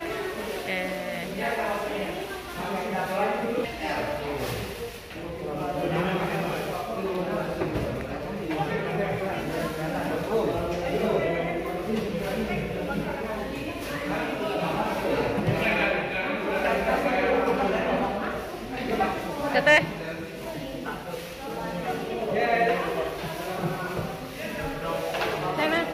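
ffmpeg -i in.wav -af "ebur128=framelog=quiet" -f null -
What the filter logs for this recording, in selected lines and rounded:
Integrated loudness:
  I:         -27.8 LUFS
  Threshold: -37.8 LUFS
Loudness range:
  LRA:         4.8 LU
  Threshold: -47.7 LUFS
  LRA low:   -29.8 LUFS
  LRA high:  -25.0 LUFS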